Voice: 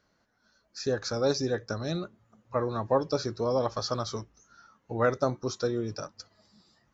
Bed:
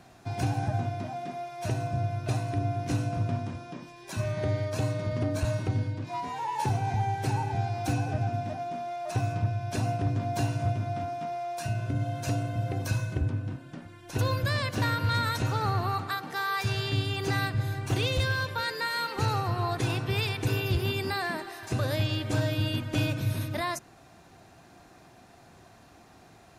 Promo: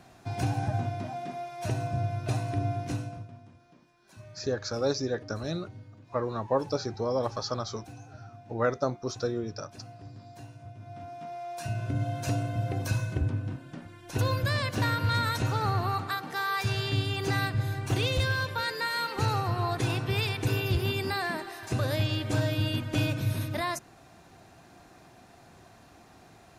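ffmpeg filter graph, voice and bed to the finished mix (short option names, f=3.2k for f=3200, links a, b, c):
-filter_complex "[0:a]adelay=3600,volume=-1.5dB[a];[1:a]volume=17.5dB,afade=t=out:st=2.72:d=0.56:silence=0.133352,afade=t=in:st=10.73:d=1.28:silence=0.125893[b];[a][b]amix=inputs=2:normalize=0"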